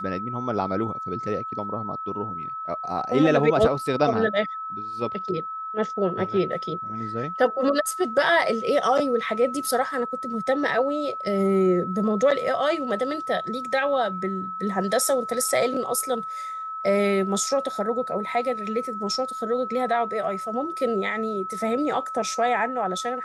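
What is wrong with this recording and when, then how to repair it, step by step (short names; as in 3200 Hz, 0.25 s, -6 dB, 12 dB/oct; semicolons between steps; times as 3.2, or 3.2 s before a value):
tone 1300 Hz -30 dBFS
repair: notch 1300 Hz, Q 30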